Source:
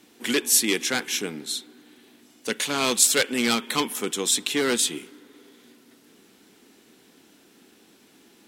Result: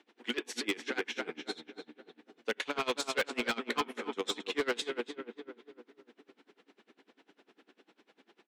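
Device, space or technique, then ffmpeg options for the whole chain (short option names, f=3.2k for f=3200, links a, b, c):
helicopter radio: -filter_complex "[0:a]highpass=360,lowpass=2.9k,asplit=2[a][b];[b]adelay=270,lowpass=f=1.8k:p=1,volume=-5dB,asplit=2[c][d];[d]adelay=270,lowpass=f=1.8k:p=1,volume=0.53,asplit=2[e][f];[f]adelay=270,lowpass=f=1.8k:p=1,volume=0.53,asplit=2[g][h];[h]adelay=270,lowpass=f=1.8k:p=1,volume=0.53,asplit=2[i][j];[j]adelay=270,lowpass=f=1.8k:p=1,volume=0.53,asplit=2[k][l];[l]adelay=270,lowpass=f=1.8k:p=1,volume=0.53,asplit=2[m][n];[n]adelay=270,lowpass=f=1.8k:p=1,volume=0.53[o];[a][c][e][g][i][k][m][o]amix=inputs=8:normalize=0,aeval=exprs='val(0)*pow(10,-25*(0.5-0.5*cos(2*PI*10*n/s))/20)':c=same,asoftclip=type=hard:threshold=-24dB"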